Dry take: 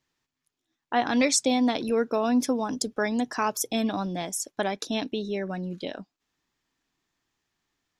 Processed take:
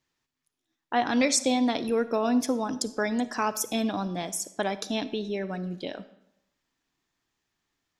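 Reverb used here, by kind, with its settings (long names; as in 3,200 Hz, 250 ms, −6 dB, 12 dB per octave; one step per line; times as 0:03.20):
comb and all-pass reverb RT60 0.81 s, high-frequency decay 0.8×, pre-delay 10 ms, DRR 14 dB
level −1 dB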